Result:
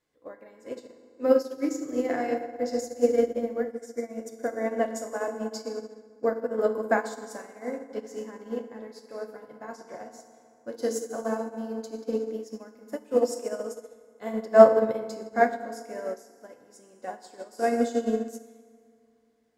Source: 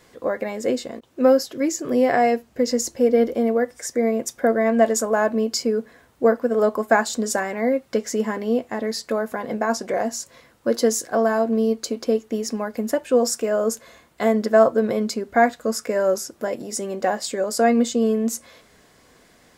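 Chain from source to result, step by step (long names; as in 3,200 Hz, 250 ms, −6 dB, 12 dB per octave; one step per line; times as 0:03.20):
feedback delay network reverb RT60 3 s, high-frequency decay 0.5×, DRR 1 dB
expander for the loud parts 2.5 to 1, over −25 dBFS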